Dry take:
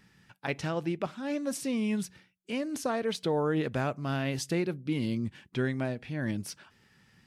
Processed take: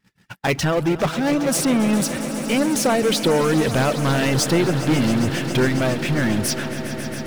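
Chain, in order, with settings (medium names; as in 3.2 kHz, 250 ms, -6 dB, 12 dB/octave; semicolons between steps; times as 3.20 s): power-law waveshaper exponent 0.5; gate -37 dBFS, range -40 dB; reverb removal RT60 0.57 s; on a send: echo with a slow build-up 136 ms, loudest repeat 5, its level -15 dB; on the sum: trim +7.5 dB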